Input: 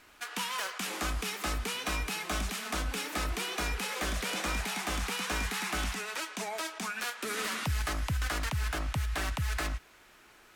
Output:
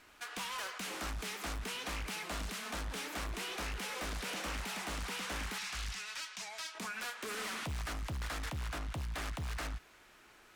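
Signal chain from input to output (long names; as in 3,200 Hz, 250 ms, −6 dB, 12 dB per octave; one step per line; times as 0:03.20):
0:05.58–0:06.75: drawn EQ curve 120 Hz 0 dB, 280 Hz −22 dB, 940 Hz −7 dB, 5,200 Hz +4 dB, 16,000 Hz −10 dB
soft clipping −32.5 dBFS, distortion −13 dB
highs frequency-modulated by the lows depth 0.73 ms
level −2.5 dB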